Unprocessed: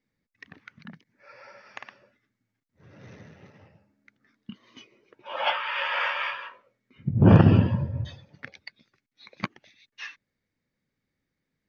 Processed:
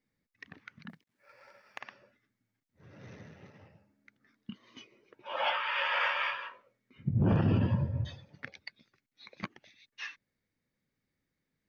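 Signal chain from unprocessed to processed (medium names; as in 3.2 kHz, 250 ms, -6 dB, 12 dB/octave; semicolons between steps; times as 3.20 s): 0.89–1.81 s: companding laws mixed up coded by A; peak limiter -16.5 dBFS, peak gain reduction 11.5 dB; trim -2.5 dB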